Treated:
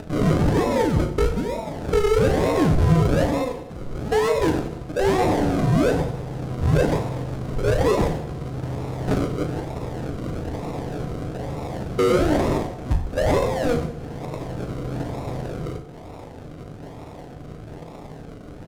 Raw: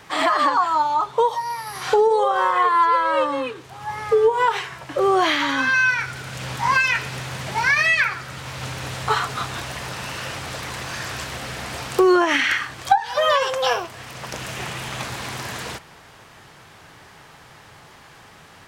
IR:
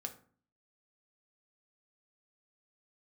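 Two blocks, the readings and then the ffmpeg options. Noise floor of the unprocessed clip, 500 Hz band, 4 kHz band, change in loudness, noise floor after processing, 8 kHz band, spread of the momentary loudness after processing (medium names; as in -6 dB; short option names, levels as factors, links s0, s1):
-47 dBFS, +0.5 dB, -9.5 dB, -2.0 dB, -39 dBFS, -5.0 dB, 19 LU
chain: -filter_complex "[0:a]lowpass=4200,acrusher=samples=40:mix=1:aa=0.000001:lfo=1:lforange=24:lforate=1.1,equalizer=f=2400:w=0.68:g=-6.5,acompressor=mode=upward:threshold=0.0398:ratio=2.5,aeval=exprs='sgn(val(0))*max(abs(val(0))-0.00562,0)':c=same,aemphasis=mode=reproduction:type=50kf,asoftclip=type=tanh:threshold=0.133,asplit=2[s0][s1];[s1]adelay=38,volume=0.398[s2];[s0][s2]amix=inputs=2:normalize=0,aecho=1:1:93|186|279|372|465|558:0.168|0.101|0.0604|0.0363|0.0218|0.0131,asplit=2[s3][s4];[1:a]atrim=start_sample=2205,asetrate=26460,aresample=44100[s5];[s4][s5]afir=irnorm=-1:irlink=0,volume=1.88[s6];[s3][s6]amix=inputs=2:normalize=0,volume=0.501"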